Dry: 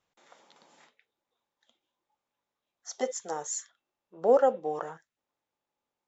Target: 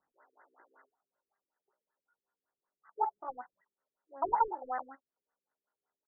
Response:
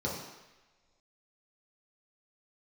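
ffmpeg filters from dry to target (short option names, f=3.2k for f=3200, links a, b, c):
-filter_complex "[0:a]asetrate=74167,aresample=44100,atempo=0.594604,asplit=2[a][b];[b]highpass=f=720:p=1,volume=13dB,asoftclip=type=tanh:threshold=-11dB[c];[a][c]amix=inputs=2:normalize=0,lowpass=f=1.5k:p=1,volume=-6dB,afftfilt=real='re*lt(b*sr/1024,450*pow(2100/450,0.5+0.5*sin(2*PI*5.3*pts/sr)))':imag='im*lt(b*sr/1024,450*pow(2100/450,0.5+0.5*sin(2*PI*5.3*pts/sr)))':win_size=1024:overlap=0.75,volume=-3.5dB"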